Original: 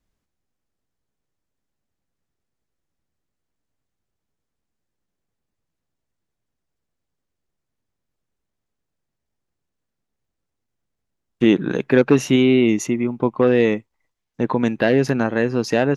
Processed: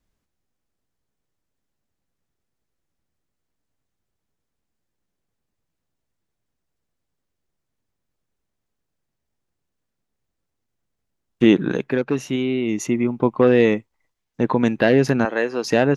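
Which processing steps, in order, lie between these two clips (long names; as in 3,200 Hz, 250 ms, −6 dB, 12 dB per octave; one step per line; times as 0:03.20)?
0:11.67–0:12.96: duck −8.5 dB, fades 0.31 s
0:15.25–0:15.65: high-pass filter 410 Hz 12 dB per octave
level +1 dB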